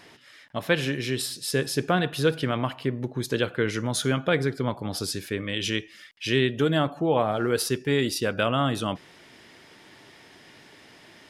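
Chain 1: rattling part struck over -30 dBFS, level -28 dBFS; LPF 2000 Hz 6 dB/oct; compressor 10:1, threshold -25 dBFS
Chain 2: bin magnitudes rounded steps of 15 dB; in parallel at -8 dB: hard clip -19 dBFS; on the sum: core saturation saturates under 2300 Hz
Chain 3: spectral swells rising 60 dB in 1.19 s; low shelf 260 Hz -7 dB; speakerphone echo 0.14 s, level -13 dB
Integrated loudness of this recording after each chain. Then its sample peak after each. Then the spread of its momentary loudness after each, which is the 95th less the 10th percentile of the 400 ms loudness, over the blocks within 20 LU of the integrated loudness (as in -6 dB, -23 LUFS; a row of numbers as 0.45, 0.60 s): -32.0, -29.0, -24.0 LUFS; -15.0, -10.0, -6.0 dBFS; 4, 21, 6 LU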